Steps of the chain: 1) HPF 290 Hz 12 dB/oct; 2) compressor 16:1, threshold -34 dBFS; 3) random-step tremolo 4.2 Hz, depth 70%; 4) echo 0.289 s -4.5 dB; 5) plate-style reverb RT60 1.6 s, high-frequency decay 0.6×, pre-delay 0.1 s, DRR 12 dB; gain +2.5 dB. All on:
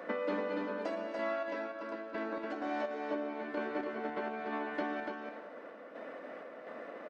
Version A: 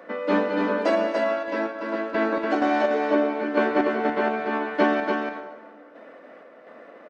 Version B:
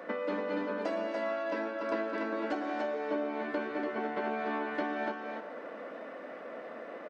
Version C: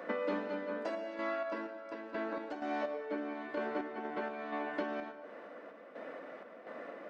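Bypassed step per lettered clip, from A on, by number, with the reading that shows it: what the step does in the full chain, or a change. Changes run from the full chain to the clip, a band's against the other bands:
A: 2, mean gain reduction 9.0 dB; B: 3, momentary loudness spread change -1 LU; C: 4, echo-to-direct -3.5 dB to -12.0 dB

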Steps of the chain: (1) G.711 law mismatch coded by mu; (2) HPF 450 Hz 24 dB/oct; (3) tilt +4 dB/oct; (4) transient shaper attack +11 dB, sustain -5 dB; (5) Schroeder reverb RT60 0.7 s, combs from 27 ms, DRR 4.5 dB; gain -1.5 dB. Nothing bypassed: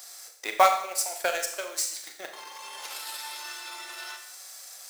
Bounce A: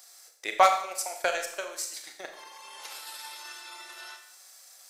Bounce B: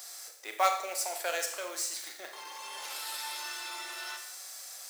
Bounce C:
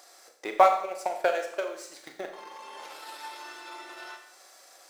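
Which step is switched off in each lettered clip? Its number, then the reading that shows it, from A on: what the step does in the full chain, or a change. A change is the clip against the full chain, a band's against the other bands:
1, distortion -17 dB; 4, 1 kHz band -2.5 dB; 3, 8 kHz band -16.5 dB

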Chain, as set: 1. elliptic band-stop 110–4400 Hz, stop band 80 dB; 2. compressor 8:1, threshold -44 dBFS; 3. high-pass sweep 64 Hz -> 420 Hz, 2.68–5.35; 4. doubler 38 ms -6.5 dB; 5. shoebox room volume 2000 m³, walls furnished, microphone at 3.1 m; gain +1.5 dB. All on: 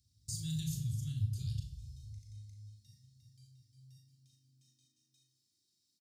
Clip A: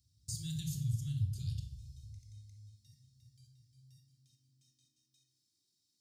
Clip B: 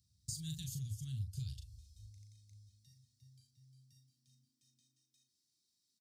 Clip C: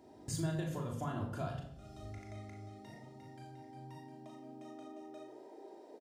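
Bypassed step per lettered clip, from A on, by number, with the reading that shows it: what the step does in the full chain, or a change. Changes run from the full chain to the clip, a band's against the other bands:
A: 4, momentary loudness spread change +3 LU; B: 5, echo-to-direct 0.0 dB to none; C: 1, 250 Hz band +8.0 dB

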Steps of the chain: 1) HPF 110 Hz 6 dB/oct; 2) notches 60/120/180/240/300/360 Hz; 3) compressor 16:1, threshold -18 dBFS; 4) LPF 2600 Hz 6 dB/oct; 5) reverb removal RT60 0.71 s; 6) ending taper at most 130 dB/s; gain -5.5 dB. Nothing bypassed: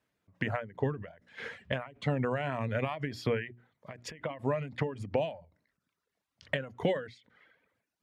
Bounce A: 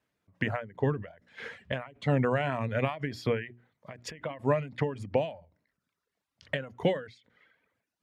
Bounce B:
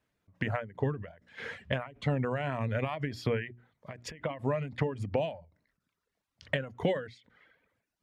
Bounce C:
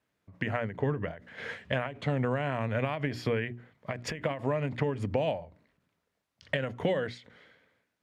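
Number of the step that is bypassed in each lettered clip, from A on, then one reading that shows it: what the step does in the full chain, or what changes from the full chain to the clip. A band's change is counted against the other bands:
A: 3, mean gain reduction 2.5 dB; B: 1, 125 Hz band +2.0 dB; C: 5, momentary loudness spread change -4 LU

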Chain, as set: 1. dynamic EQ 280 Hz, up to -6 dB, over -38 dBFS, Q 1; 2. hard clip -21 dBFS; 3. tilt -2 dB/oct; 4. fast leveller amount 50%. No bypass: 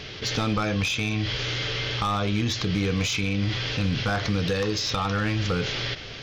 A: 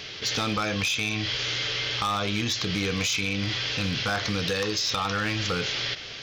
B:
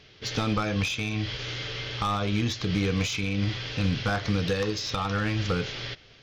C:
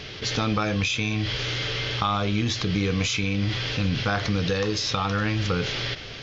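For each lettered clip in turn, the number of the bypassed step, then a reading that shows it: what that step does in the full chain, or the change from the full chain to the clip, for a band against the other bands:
3, 125 Hz band -6.5 dB; 4, momentary loudness spread change +4 LU; 2, distortion -16 dB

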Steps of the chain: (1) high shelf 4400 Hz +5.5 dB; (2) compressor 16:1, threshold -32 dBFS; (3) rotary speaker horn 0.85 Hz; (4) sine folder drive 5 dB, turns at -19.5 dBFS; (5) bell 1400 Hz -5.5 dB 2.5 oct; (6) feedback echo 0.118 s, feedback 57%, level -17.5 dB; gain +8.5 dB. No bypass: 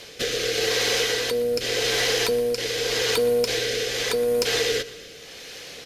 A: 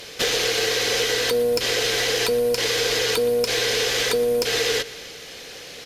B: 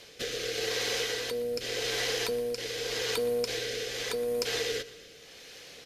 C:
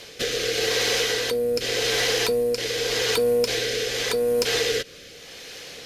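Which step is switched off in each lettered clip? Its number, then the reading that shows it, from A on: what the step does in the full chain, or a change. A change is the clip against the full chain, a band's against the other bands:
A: 3, crest factor change -2.0 dB; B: 4, distortion -25 dB; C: 6, echo-to-direct -16.0 dB to none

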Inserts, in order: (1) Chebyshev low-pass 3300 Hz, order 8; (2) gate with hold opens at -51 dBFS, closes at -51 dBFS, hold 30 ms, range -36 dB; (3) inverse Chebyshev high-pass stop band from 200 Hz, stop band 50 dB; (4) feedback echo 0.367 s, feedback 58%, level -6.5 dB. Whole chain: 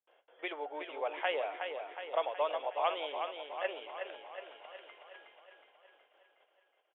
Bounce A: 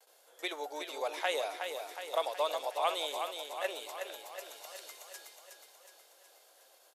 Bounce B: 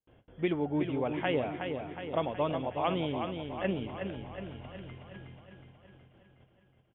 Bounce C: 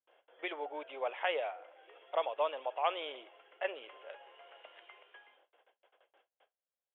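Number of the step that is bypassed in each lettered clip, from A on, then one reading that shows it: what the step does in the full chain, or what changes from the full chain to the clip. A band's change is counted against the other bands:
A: 1, momentary loudness spread change -1 LU; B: 3, 250 Hz band +20.5 dB; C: 4, echo-to-direct -4.5 dB to none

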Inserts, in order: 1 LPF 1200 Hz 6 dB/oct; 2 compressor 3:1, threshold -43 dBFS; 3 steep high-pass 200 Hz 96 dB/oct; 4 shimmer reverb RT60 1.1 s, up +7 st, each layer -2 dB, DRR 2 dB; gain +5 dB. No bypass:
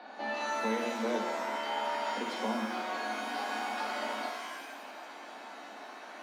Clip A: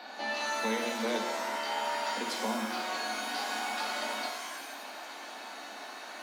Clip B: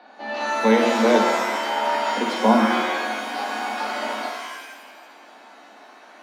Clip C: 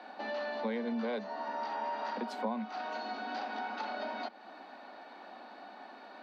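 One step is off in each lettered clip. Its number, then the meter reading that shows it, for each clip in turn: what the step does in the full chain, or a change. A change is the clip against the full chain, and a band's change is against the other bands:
1, 8 kHz band +7.5 dB; 2, mean gain reduction 7.0 dB; 4, 4 kHz band -4.5 dB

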